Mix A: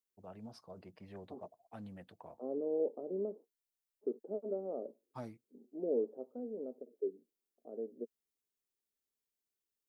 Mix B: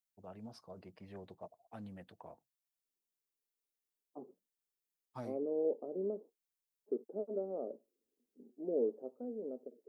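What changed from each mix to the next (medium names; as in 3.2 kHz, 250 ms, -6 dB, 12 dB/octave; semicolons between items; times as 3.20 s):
second voice: entry +2.85 s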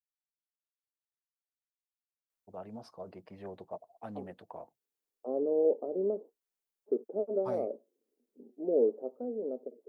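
first voice: entry +2.30 s; master: add peaking EQ 640 Hz +8 dB 2.7 oct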